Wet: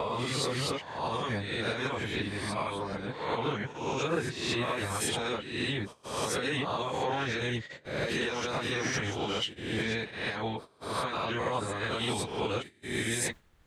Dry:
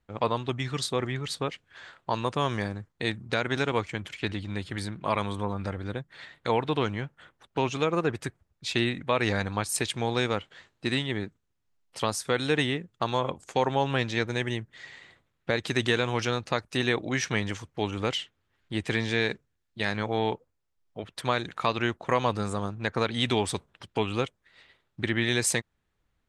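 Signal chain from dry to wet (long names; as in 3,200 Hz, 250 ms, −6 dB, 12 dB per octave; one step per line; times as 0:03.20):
peak hold with a rise ahead of every peak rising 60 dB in 1.41 s
noise gate with hold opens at −30 dBFS
brickwall limiter −17 dBFS, peak gain reduction 9.5 dB
reversed playback
upward compression, threshold −35 dBFS
reversed playback
time stretch by phase vocoder 0.52×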